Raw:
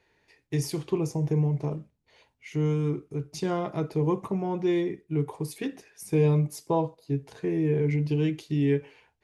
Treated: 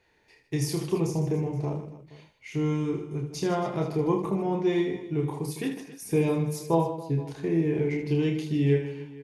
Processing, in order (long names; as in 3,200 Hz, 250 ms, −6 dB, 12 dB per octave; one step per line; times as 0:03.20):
reverse bouncing-ball delay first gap 30 ms, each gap 1.6×, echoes 5